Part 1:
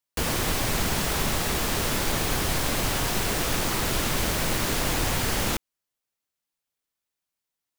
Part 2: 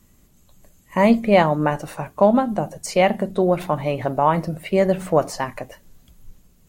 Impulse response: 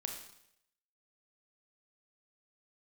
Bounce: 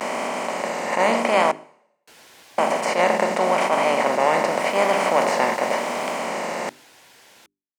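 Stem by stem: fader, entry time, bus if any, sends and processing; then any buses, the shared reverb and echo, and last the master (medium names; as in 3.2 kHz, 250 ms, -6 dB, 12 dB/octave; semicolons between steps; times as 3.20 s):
4.34 s -20 dB -> 4.73 s -13 dB -> 6.12 s -13 dB -> 6.33 s -22 dB, 1.90 s, no send, band-stop 1.2 kHz, Q 6.8
-8.0 dB, 0.00 s, muted 1.52–2.58 s, send -14 dB, spectral levelling over time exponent 0.2; attacks held to a fixed rise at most 150 dB/s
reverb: on, RT60 0.75 s, pre-delay 27 ms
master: hum notches 50/100/150/200/250/300/350/400 Hz; vibrato 0.87 Hz 78 cents; frequency weighting A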